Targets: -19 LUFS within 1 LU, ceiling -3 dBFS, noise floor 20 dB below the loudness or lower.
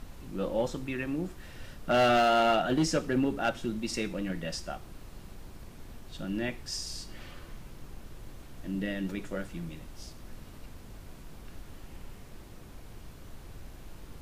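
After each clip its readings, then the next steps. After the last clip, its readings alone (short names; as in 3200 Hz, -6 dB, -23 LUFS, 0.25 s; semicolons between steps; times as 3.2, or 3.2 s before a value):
clipped 0.9%; flat tops at -20.0 dBFS; noise floor -48 dBFS; noise floor target -51 dBFS; loudness -30.5 LUFS; peak -20.0 dBFS; loudness target -19.0 LUFS
-> clip repair -20 dBFS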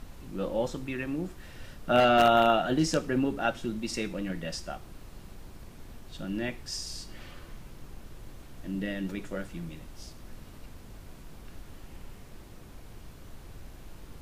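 clipped 0.0%; noise floor -48 dBFS; noise floor target -49 dBFS
-> noise print and reduce 6 dB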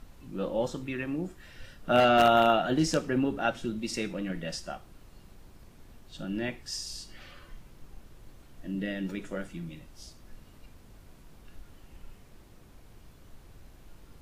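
noise floor -54 dBFS; loudness -29.0 LUFS; peak -11.0 dBFS; loudness target -19.0 LUFS
-> gain +10 dB; limiter -3 dBFS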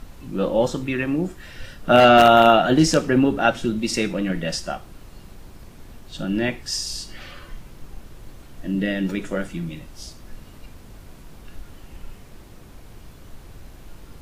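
loudness -19.5 LUFS; peak -3.0 dBFS; noise floor -44 dBFS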